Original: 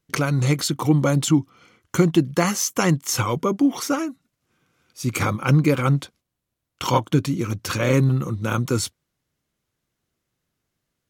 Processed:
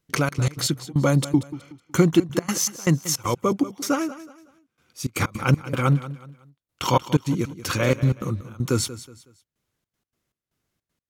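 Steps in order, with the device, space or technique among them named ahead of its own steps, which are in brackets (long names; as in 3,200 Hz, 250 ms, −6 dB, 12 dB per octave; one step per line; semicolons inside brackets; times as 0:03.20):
trance gate with a delay (gate pattern "xxx.x.xx.." 157 BPM −24 dB; repeating echo 185 ms, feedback 33%, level −15 dB)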